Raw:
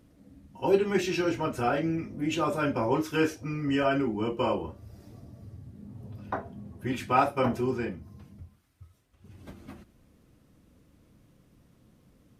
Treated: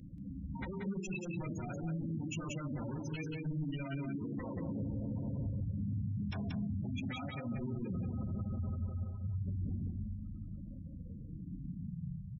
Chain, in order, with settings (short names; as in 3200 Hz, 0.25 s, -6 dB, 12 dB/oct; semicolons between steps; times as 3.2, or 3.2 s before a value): on a send at -12.5 dB: tilt -3.5 dB/oct + reverb RT60 4.7 s, pre-delay 3 ms; on the sum: compressor 12:1, threshold -38 dBFS, peak gain reduction 21.5 dB; wavefolder -39 dBFS; low-pass sweep 7500 Hz -> 140 Hz, 8.99–12.12; spectral gate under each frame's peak -10 dB strong; band shelf 660 Hz -12 dB 2.6 oct; notches 60/120 Hz; echo 0.182 s -5.5 dB; limiter -42.5 dBFS, peak gain reduction 6 dB; gain +12 dB